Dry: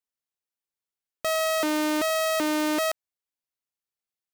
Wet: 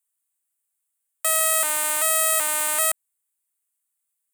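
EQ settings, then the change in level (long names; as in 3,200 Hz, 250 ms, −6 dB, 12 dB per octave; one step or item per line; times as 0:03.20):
Bessel high-pass filter 1,000 Hz, order 4
high shelf with overshoot 6,800 Hz +9 dB, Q 3
+4.0 dB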